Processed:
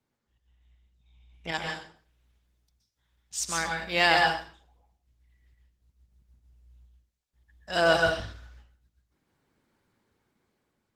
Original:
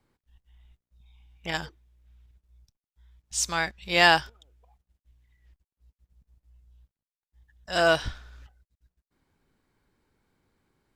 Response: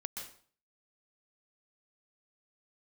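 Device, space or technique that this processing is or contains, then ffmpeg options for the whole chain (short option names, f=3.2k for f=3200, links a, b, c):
far-field microphone of a smart speaker: -filter_complex "[0:a]asplit=3[a][b][c];[a]afade=t=out:st=1.51:d=0.02[d];[b]highpass=f=220:p=1,afade=t=in:st=1.51:d=0.02,afade=t=out:st=3.38:d=0.02[e];[c]afade=t=in:st=3.38:d=0.02[f];[d][e][f]amix=inputs=3:normalize=0[g];[1:a]atrim=start_sample=2205[h];[g][h]afir=irnorm=-1:irlink=0,highpass=81,dynaudnorm=f=490:g=5:m=7dB,volume=-3.5dB" -ar 48000 -c:a libopus -b:a 16k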